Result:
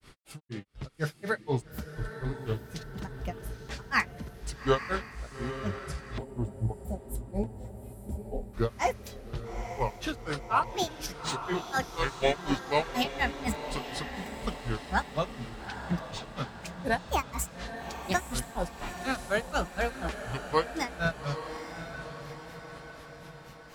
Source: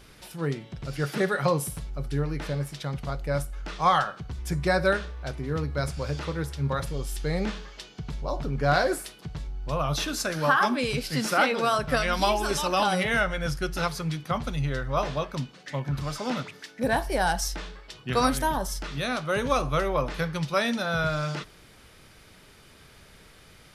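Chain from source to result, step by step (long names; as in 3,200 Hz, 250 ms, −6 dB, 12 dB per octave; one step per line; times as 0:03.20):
granular cloud 166 ms, grains 4.1 per second, spray 18 ms, pitch spread up and down by 7 semitones
feedback delay with all-pass diffusion 863 ms, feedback 57%, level −9.5 dB
gain on a spectral selection 0:06.18–0:08.54, 990–7,100 Hz −17 dB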